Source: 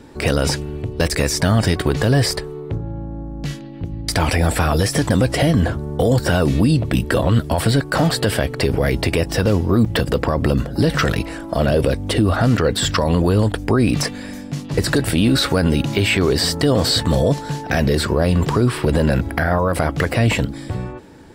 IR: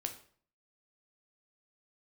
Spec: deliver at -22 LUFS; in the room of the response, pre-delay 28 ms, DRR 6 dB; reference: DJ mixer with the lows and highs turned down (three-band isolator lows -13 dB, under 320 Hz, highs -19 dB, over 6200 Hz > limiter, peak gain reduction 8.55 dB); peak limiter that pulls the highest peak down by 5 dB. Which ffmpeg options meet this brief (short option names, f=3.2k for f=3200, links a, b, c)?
-filter_complex "[0:a]alimiter=limit=-12dB:level=0:latency=1,asplit=2[a][b];[1:a]atrim=start_sample=2205,adelay=28[c];[b][c]afir=irnorm=-1:irlink=0,volume=-6dB[d];[a][d]amix=inputs=2:normalize=0,acrossover=split=320 6200:gain=0.224 1 0.112[e][f][g];[e][f][g]amix=inputs=3:normalize=0,volume=5.5dB,alimiter=limit=-11.5dB:level=0:latency=1"